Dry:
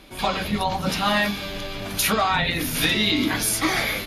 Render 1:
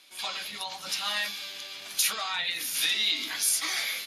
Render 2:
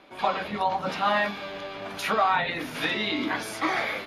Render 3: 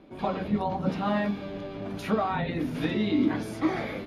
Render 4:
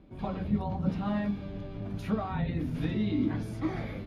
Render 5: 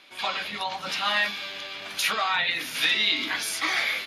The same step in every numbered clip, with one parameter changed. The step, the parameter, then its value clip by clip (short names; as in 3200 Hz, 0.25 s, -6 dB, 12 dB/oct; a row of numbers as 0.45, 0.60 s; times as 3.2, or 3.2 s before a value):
band-pass, frequency: 6800, 890, 290, 110, 2600 Hz